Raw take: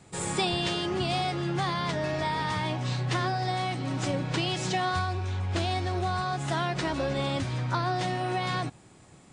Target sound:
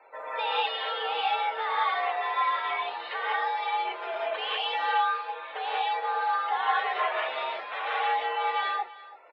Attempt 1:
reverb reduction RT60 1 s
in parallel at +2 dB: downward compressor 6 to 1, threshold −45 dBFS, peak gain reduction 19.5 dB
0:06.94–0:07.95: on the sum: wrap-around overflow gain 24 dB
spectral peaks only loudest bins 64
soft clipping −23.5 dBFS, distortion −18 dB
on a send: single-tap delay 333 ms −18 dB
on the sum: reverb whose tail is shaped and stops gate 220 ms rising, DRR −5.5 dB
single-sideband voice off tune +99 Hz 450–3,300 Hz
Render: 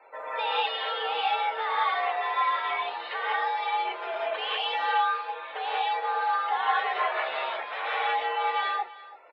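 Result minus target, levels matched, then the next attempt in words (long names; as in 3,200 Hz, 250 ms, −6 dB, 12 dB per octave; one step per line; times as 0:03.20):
downward compressor: peak gain reduction −7 dB
reverb reduction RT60 1 s
in parallel at +2 dB: downward compressor 6 to 1, threshold −53.5 dBFS, peak gain reduction 26.5 dB
0:06.94–0:07.95: on the sum: wrap-around overflow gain 24 dB
spectral peaks only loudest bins 64
soft clipping −23.5 dBFS, distortion −19 dB
on a send: single-tap delay 333 ms −18 dB
on the sum: reverb whose tail is shaped and stops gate 220 ms rising, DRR −5.5 dB
single-sideband voice off tune +99 Hz 450–3,300 Hz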